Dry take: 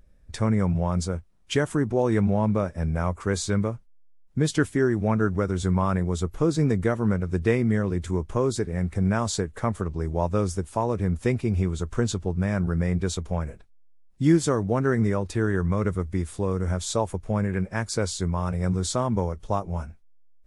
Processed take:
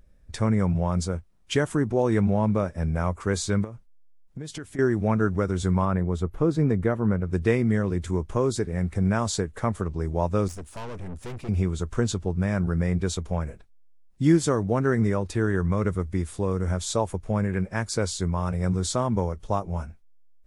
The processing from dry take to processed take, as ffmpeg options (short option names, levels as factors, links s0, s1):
-filter_complex "[0:a]asettb=1/sr,asplit=3[s0][s1][s2];[s0]atrim=end=3.644[s3];[s1]atrim=start=3.64:end=4.79,asetpts=PTS-STARTPTS,afade=t=in:d=0.004:c=qsin,afade=t=out:st=1.146:d=0.004:c=qsin,acompressor=threshold=0.0224:ratio=6:attack=3.2:release=140:knee=1:detection=peak[s4];[s2]atrim=start=4.786[s5];[s3][s4]acrossfade=d=0.004:c1=hsin:c2=qsin[s6];[s6][s5]acrossfade=d=0.004:c1=qsin:c2=hsin,asettb=1/sr,asplit=3[s7][s8][s9];[s7]atrim=end=5.854[s10];[s8]atrim=start=5.85:end=7.33,asetpts=PTS-STARTPTS,afade=t=in:d=0.004:c=qsin,afade=t=out:st=1.476:d=0.004:c=qsin,equalizer=f=7100:w=0.47:g=-11.5[s11];[s9]atrim=start=7.326[s12];[s10][s11]acrossfade=d=0.004:c1=hsin:c2=qsin[s13];[s13][s12]acrossfade=d=0.004:c1=qsin:c2=hsin,asettb=1/sr,asplit=3[s14][s15][s16];[s14]atrim=end=10.484[s17];[s15]atrim=start=10.48:end=11.49,asetpts=PTS-STARTPTS,afade=t=in:d=0.004:c=qsin,afade=t=out:st=1.006:d=0.004:c=qsin,aeval=exprs='(tanh(50.1*val(0)+0.6)-tanh(0.6))/50.1':c=same[s18];[s16]atrim=start=11.486[s19];[s17][s18]acrossfade=d=0.004:c1=hsin:c2=qsin[s20];[s20][s19]acrossfade=d=0.004:c1=qsin:c2=hsin"